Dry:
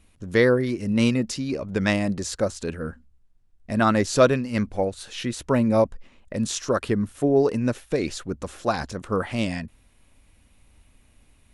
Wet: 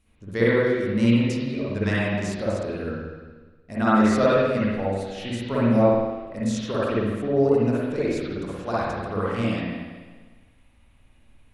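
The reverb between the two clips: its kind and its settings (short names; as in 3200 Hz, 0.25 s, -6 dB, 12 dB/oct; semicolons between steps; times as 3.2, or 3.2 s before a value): spring tank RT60 1.4 s, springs 51/60 ms, chirp 35 ms, DRR -8.5 dB; gain -9 dB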